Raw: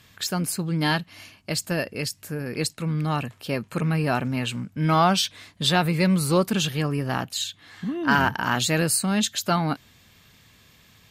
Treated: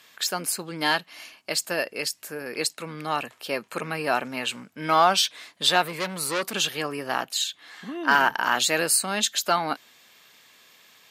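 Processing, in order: high-pass 440 Hz 12 dB/octave; in parallel at -4.5 dB: one-sided clip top -14 dBFS; 5.82–6.55 s: on the sum: transformer saturation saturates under 2.4 kHz; trim -2 dB

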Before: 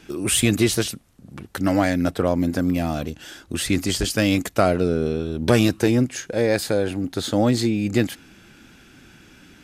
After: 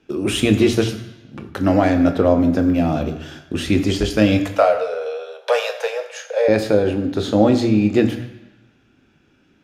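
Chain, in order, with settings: gate -41 dBFS, range -13 dB; 4.37–6.48 s: steep high-pass 470 Hz 96 dB/octave; reverberation RT60 1.1 s, pre-delay 17 ms, DRR 5.5 dB; trim -5 dB

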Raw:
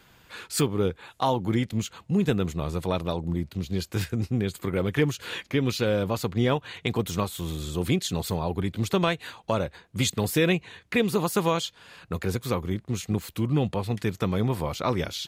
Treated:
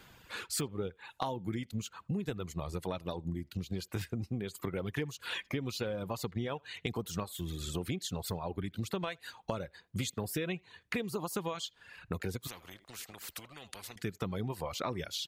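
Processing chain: reverb removal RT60 1.1 s; compression, threshold -33 dBFS, peak gain reduction 14.5 dB; speakerphone echo 80 ms, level -29 dB; 12.47–13.96 s: spectrum-flattening compressor 4:1

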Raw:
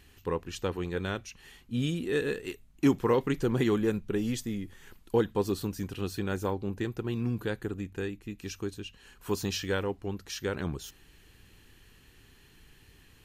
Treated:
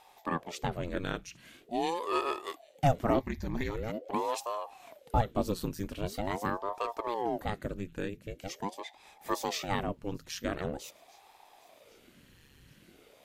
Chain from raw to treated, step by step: 3.21–4.12 s: static phaser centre 2 kHz, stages 8; feedback echo behind a high-pass 794 ms, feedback 52%, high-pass 2.8 kHz, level -24 dB; ring modulator with a swept carrier 450 Hz, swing 85%, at 0.44 Hz; trim +1 dB

